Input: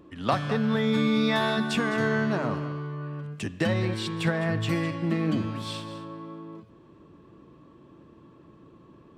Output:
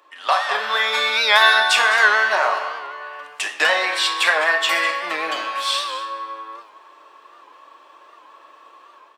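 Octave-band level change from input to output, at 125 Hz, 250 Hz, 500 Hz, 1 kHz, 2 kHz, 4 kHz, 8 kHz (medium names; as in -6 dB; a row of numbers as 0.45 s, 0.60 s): under -30 dB, -17.5 dB, +3.5 dB, +13.0 dB, +16.0 dB, +15.5 dB, +15.0 dB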